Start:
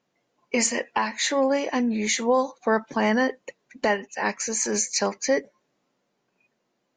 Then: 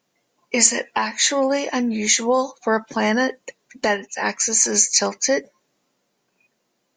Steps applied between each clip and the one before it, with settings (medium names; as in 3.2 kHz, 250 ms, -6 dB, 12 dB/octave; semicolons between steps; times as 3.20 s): treble shelf 4.7 kHz +11 dB; trim +2 dB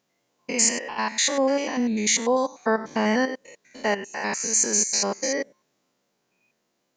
spectrogram pixelated in time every 100 ms; trim -1.5 dB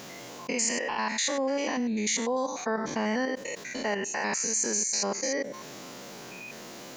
level flattener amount 70%; trim -8.5 dB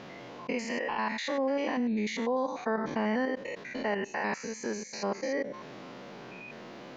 distance through air 260 m